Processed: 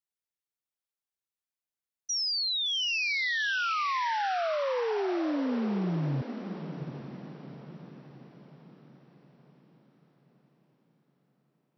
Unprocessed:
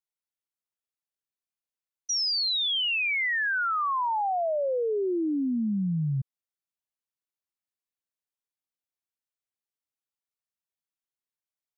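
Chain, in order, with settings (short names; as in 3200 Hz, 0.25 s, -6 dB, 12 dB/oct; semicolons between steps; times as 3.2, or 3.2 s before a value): diffused feedback echo 0.764 s, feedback 49%, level -9 dB; gain -3 dB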